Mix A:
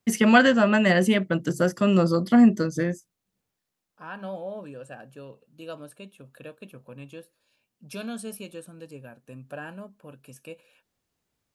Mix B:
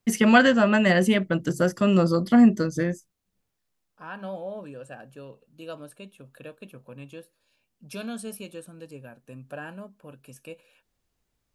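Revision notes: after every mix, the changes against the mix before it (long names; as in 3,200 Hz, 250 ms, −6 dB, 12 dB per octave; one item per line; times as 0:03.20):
first voice: remove high-pass filter 90 Hz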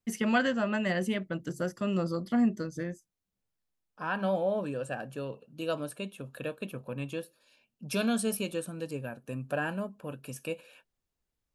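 first voice −10.0 dB
second voice +6.0 dB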